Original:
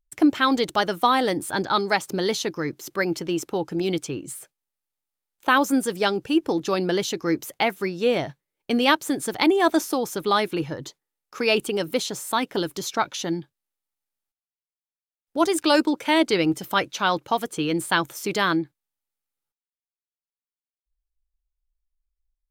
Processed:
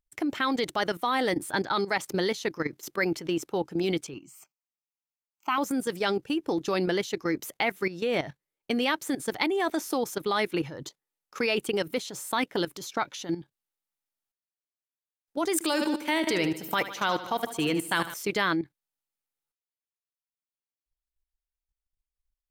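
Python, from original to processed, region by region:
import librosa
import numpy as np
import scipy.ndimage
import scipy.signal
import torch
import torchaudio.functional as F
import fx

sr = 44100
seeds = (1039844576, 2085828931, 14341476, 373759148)

y = fx.chain(x, sr, fx.highpass(hz=220.0, slope=6),
    fx.fixed_phaser(hz=2500.0, stages=8), at=(4.14, 5.58))
y = fx.chain(y, sr, fx.high_shelf(hz=11000.0, db=11.5),
    fx.echo_feedback(ms=75, feedback_pct=59, wet_db=-11.0), at=(15.53, 18.14))
y = fx.low_shelf(y, sr, hz=81.0, db=-4.5)
y = fx.level_steps(y, sr, step_db=13)
y = fx.dynamic_eq(y, sr, hz=2000.0, q=3.3, threshold_db=-48.0, ratio=4.0, max_db=5)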